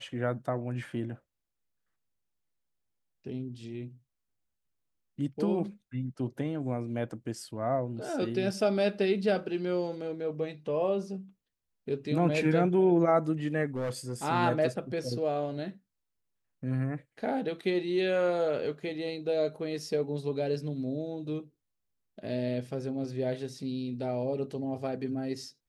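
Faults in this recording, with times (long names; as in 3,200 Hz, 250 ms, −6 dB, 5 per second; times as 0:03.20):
0:13.75–0:14.13: clipping −28.5 dBFS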